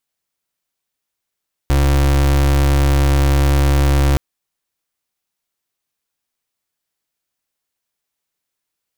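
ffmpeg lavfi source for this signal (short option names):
-f lavfi -i "aevalsrc='0.224*(2*lt(mod(69.8*t,1),0.33)-1)':d=2.47:s=44100"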